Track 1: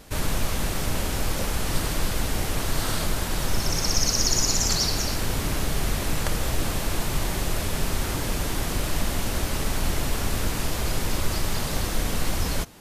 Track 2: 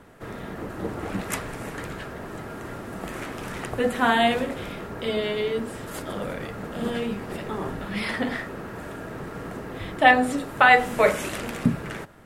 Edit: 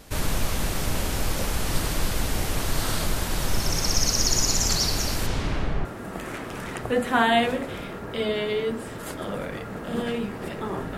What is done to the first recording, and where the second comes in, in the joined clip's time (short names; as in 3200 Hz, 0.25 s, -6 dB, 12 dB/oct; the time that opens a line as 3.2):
track 1
5.26–5.85 LPF 7000 Hz -> 1400 Hz
5.85 switch to track 2 from 2.73 s